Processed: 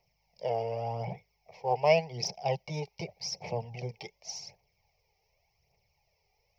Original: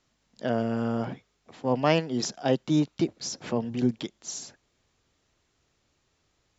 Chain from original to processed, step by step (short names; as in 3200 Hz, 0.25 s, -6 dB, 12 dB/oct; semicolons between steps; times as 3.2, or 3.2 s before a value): EQ curve 180 Hz 0 dB, 270 Hz -27 dB, 420 Hz 0 dB, 850 Hz +9 dB, 1500 Hz -26 dB, 2200 Hz +9 dB, 3600 Hz -11 dB, 5400 Hz +8 dB, 7800 Hz -26 dB, 12000 Hz +15 dB; phaser 0.87 Hz, delay 2.6 ms, feedback 50%; gain -5.5 dB